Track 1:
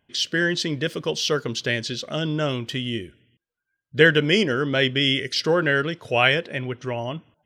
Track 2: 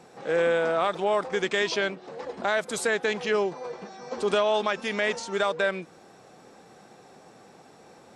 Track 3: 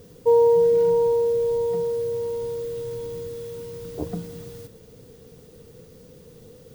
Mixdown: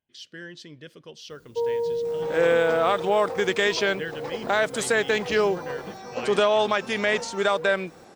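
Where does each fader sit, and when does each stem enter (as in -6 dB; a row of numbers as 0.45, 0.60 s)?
-18.5, +3.0, -9.5 dB; 0.00, 2.05, 1.30 s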